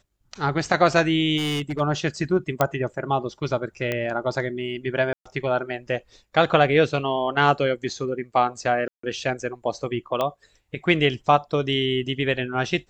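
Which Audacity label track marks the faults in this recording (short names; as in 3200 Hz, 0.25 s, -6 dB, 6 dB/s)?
1.370000	1.810000	clipped -23 dBFS
2.610000	2.610000	pop -6 dBFS
3.920000	3.920000	pop -12 dBFS
5.130000	5.250000	gap 0.125 s
8.880000	9.030000	gap 0.154 s
10.210000	10.210000	pop -12 dBFS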